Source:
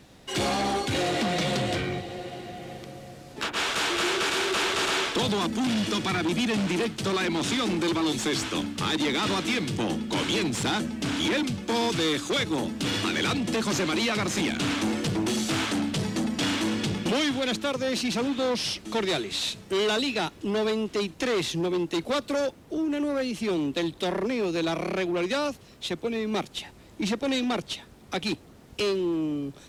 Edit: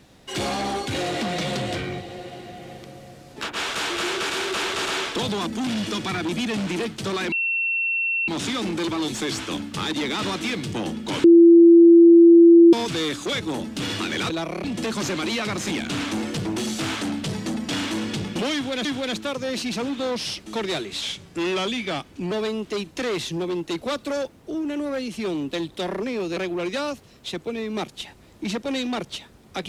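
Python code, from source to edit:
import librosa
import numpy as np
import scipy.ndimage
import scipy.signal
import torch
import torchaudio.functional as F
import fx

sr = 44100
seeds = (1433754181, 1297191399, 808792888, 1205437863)

y = fx.edit(x, sr, fx.insert_tone(at_s=7.32, length_s=0.96, hz=2710.0, db=-20.5),
    fx.bleep(start_s=10.28, length_s=1.49, hz=338.0, db=-7.0),
    fx.repeat(start_s=17.24, length_s=0.31, count=2),
    fx.speed_span(start_s=19.4, length_s=1.15, speed=0.88),
    fx.move(start_s=24.6, length_s=0.34, to_s=13.34), tone=tone)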